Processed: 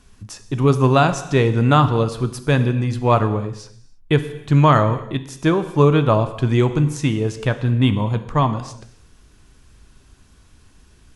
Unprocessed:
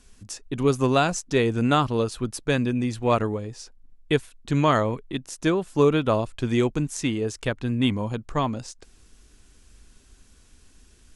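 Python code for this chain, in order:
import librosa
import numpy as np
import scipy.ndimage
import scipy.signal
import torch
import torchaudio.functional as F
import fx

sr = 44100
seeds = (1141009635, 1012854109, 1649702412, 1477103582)

y = fx.graphic_eq_10(x, sr, hz=(125, 1000, 8000), db=(8, 5, -5))
y = fx.rev_gated(y, sr, seeds[0], gate_ms=350, shape='falling', drr_db=9.5)
y = y * 10.0 ** (2.5 / 20.0)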